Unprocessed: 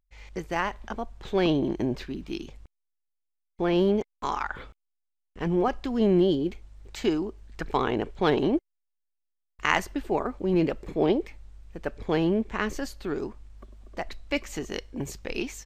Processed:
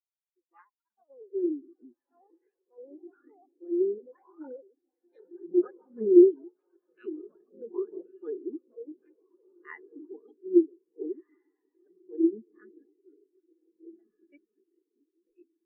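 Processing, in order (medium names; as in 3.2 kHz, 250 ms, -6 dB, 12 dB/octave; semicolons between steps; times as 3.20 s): bass shelf 120 Hz -11 dB; echo that smears into a reverb 1681 ms, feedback 57%, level -3 dB; ever faster or slower copies 153 ms, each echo +6 st, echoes 2; fifteen-band graphic EQ 160 Hz -8 dB, 630 Hz -6 dB, 1.6 kHz +3 dB; on a send: two-band feedback delay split 570 Hz, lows 148 ms, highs 773 ms, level -14.5 dB; on the sum: spectral contrast expander 4:1; trim -3 dB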